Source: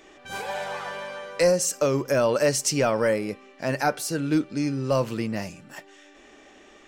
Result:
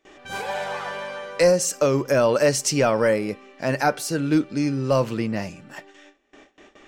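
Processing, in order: gate with hold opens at -41 dBFS; treble shelf 7.1 kHz -4 dB, from 5.10 s -10 dB; trim +3 dB

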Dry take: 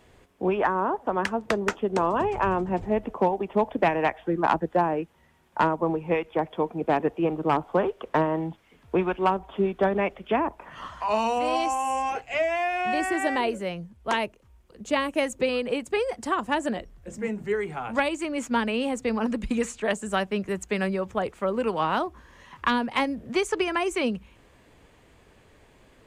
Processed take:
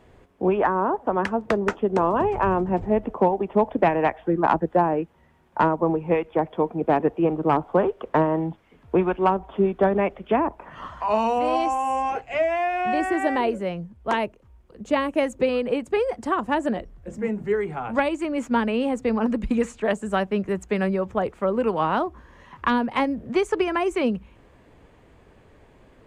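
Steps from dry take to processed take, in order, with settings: treble shelf 2.3 kHz -11 dB; trim +4 dB

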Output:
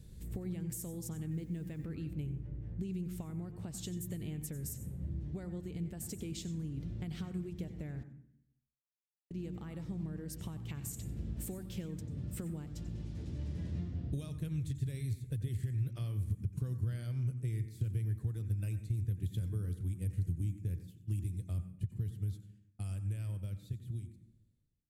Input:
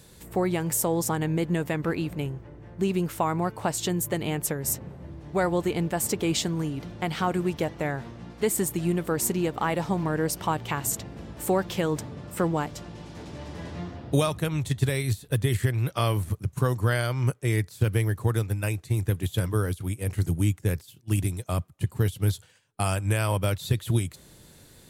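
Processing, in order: fade out at the end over 6.38 s; in parallel at -2 dB: peak limiter -19 dBFS, peak gain reduction 9 dB; on the sum: compression 4:1, threshold -30 dBFS, peak gain reduction 13 dB; 1.30–1.85 s: added noise white -61 dBFS; amplifier tone stack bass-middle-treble 10-0-1; 8.03–9.31 s: word length cut 6-bit, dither none; on a send at -9 dB: resonant high shelf 6.2 kHz +9.5 dB, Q 1.5 + reverberation RT60 0.70 s, pre-delay 88 ms; on the sum: tape noise reduction on one side only decoder only; trim +8.5 dB

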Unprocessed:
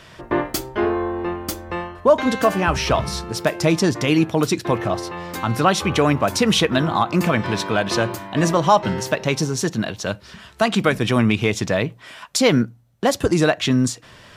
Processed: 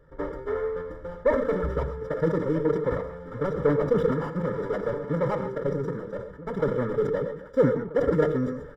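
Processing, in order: median filter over 41 samples; Savitzky-Golay filter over 25 samples; static phaser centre 520 Hz, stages 8; comb 2.3 ms, depth 85%; time stretch by phase-locked vocoder 0.61×; echo from a far wall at 220 m, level -15 dB; gated-style reverb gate 150 ms rising, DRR 9 dB; decay stretcher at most 72 dB/s; trim -2.5 dB

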